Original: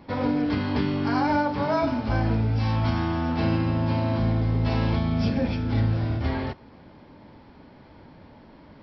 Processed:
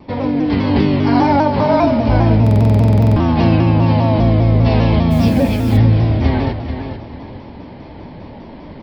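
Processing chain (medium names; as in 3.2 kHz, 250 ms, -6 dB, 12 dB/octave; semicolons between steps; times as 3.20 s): feedback delay 441 ms, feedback 24%, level -11 dB; level rider gain up to 7 dB; peaking EQ 1.4 kHz -9 dB 0.55 oct; in parallel at -2.5 dB: compression, threshold -29 dBFS, peak gain reduction 15.5 dB; on the sum: distance through air 110 m; on a send at -12 dB: reverberation RT60 0.35 s, pre-delay 110 ms; 5.10–5.76 s: on the sum: added noise white -45 dBFS; buffer glitch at 2.42 s, samples 2048, times 15; vibrato with a chosen wave saw down 5 Hz, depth 100 cents; trim +3.5 dB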